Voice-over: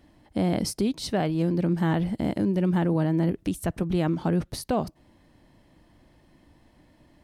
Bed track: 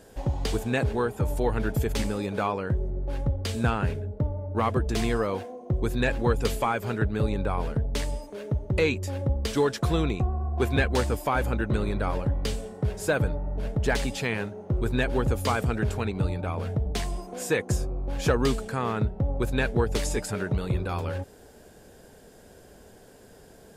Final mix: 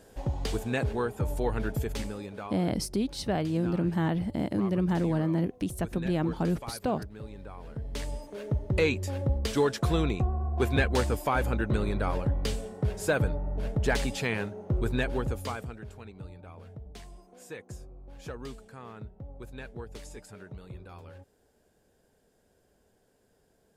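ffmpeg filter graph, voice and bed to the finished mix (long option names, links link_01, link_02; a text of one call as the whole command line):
ffmpeg -i stem1.wav -i stem2.wav -filter_complex "[0:a]adelay=2150,volume=-3.5dB[link_01];[1:a]volume=11.5dB,afade=type=out:start_time=1.62:duration=0.97:silence=0.223872,afade=type=in:start_time=7.61:duration=0.81:silence=0.177828,afade=type=out:start_time=14.79:duration=1:silence=0.16788[link_02];[link_01][link_02]amix=inputs=2:normalize=0" out.wav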